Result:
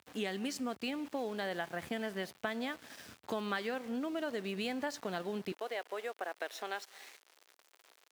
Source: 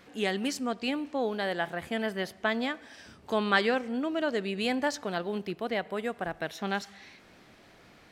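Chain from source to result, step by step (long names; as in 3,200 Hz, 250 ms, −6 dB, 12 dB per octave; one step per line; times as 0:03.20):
downward compressor 4 to 1, threshold −35 dBFS, peak gain reduction 13.5 dB
centre clipping without the shift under −48.5 dBFS
high-pass filter 73 Hz 24 dB per octave, from 0:05.52 380 Hz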